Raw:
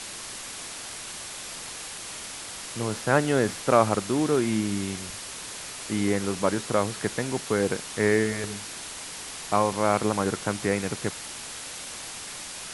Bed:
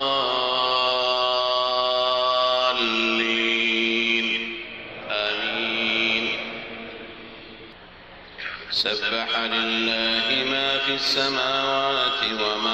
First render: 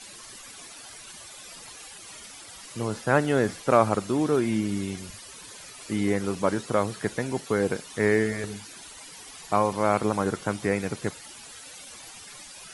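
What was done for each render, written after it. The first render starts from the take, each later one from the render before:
broadband denoise 13 dB, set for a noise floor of −39 dBFS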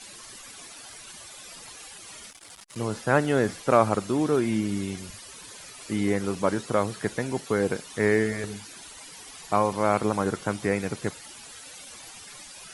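0:02.30–0:02.76: saturating transformer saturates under 1,600 Hz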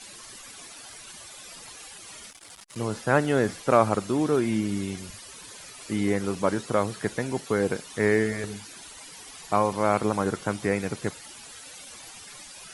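no processing that can be heard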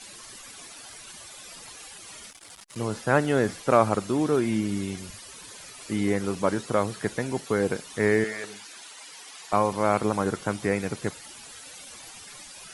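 0:08.24–0:09.53: meter weighting curve A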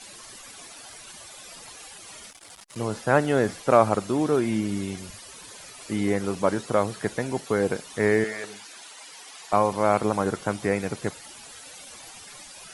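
parametric band 680 Hz +3 dB 1 octave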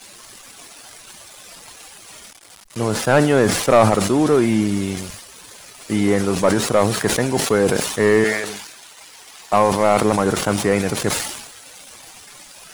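leveller curve on the samples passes 2
level that may fall only so fast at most 54 dB per second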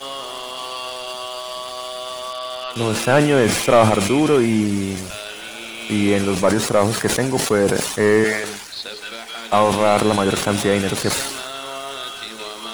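mix in bed −8 dB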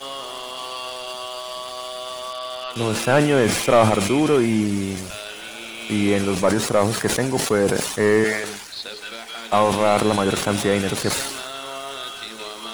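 level −2 dB

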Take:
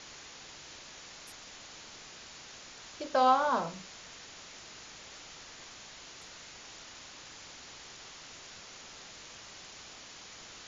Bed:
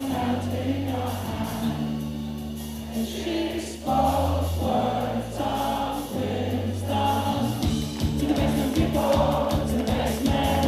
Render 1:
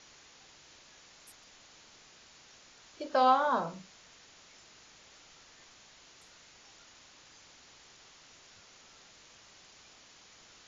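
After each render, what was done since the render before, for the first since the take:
noise reduction from a noise print 8 dB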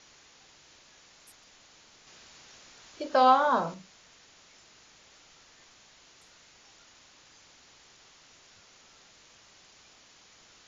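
0:02.07–0:03.74: clip gain +4 dB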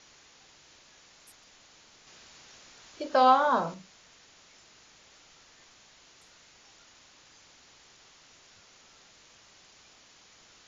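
no processing that can be heard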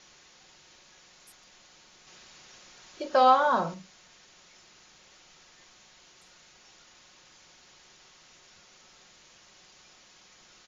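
comb filter 5.5 ms, depth 37%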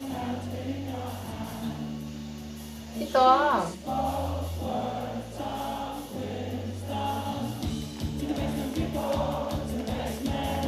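mix in bed −7 dB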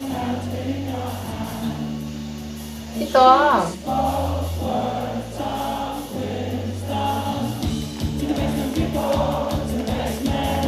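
level +7.5 dB
brickwall limiter −3 dBFS, peak gain reduction 1 dB

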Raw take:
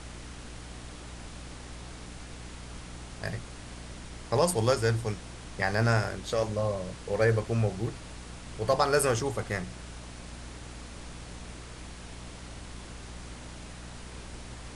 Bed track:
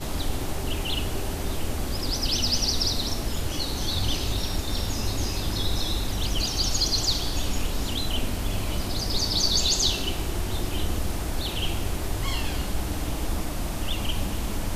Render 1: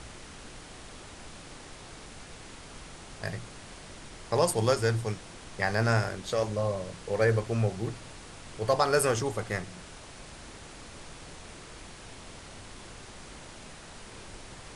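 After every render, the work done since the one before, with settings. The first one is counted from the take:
hum removal 60 Hz, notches 5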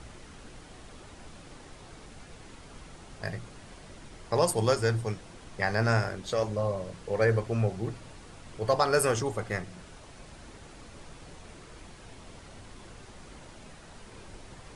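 broadband denoise 6 dB, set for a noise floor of −47 dBFS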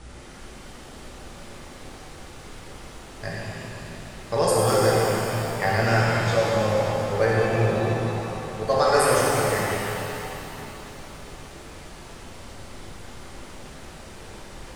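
reverb with rising layers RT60 3.2 s, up +7 semitones, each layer −8 dB, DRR −5.5 dB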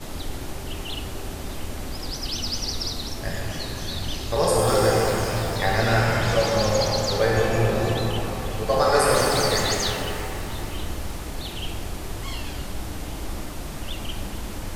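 mix in bed track −4 dB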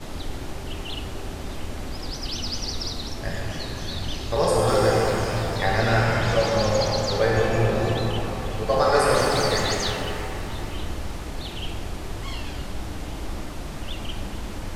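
high-shelf EQ 9,600 Hz −12 dB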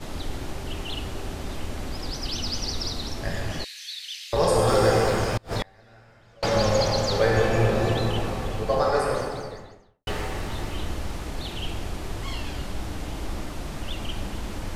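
0:03.64–0:04.33: Butterworth high-pass 2,000 Hz
0:05.29–0:06.43: gate with flip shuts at −14 dBFS, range −32 dB
0:08.26–0:10.07: fade out and dull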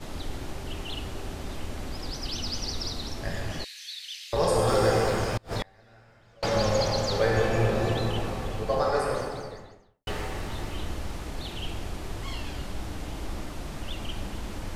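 level −3 dB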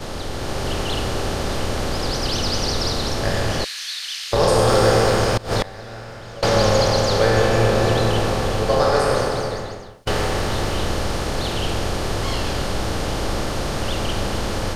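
compressor on every frequency bin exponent 0.6
automatic gain control gain up to 5.5 dB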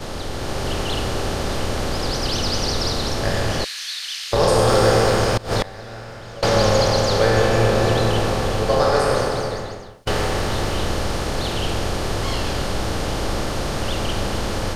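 no processing that can be heard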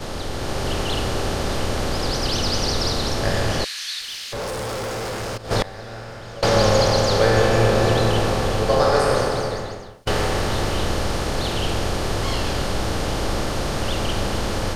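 0:04.01–0:05.51: tube saturation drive 26 dB, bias 0.25

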